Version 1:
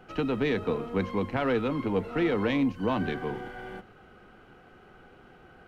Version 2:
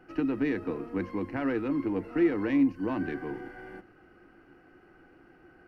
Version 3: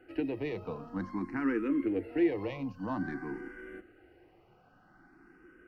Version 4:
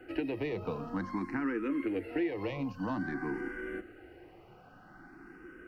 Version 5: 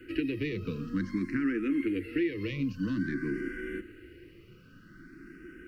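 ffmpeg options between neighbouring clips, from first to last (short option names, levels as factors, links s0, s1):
-af "superequalizer=6b=3.16:11b=1.58:13b=0.355:15b=0.631,volume=0.473"
-filter_complex "[0:a]asplit=2[s0][s1];[s1]afreqshift=0.51[s2];[s0][s2]amix=inputs=2:normalize=1"
-filter_complex "[0:a]acrossover=split=540|1400[s0][s1][s2];[s0]acompressor=threshold=0.00891:ratio=4[s3];[s1]acompressor=threshold=0.00316:ratio=4[s4];[s2]acompressor=threshold=0.00282:ratio=4[s5];[s3][s4][s5]amix=inputs=3:normalize=0,volume=2.24"
-af "asuperstop=centerf=780:order=4:qfactor=0.57,volume=1.88"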